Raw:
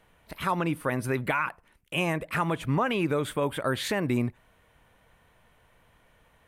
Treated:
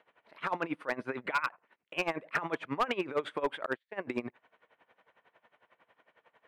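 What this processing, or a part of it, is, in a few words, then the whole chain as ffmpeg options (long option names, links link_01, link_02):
helicopter radio: -filter_complex "[0:a]asettb=1/sr,asplit=3[link_01][link_02][link_03];[link_01]atrim=end=3.664[link_04];[link_02]atrim=start=3.66:end=4.07,asetpts=PTS-STARTPTS,afade=type=in:duration=0.004:curve=qsin,afade=type=out:start_time=0.406:duration=0.004:curve=qsin,agate=range=-45dB:threshold=-25dB:ratio=16:detection=peak[link_05];[link_03]atrim=start=4.066[link_06];[link_04][link_05]acrossfade=duration=0.004:curve1=hsin:curve2=qsin[link_07];[link_07][link_06]acrossfade=duration=0.004:curve1=qsin:curve2=hsin,highpass=380,lowpass=2700,aeval=exprs='val(0)*pow(10,-19*(0.5-0.5*cos(2*PI*11*n/s))/20)':channel_layout=same,asoftclip=type=hard:threshold=-25dB,volume=3.5dB"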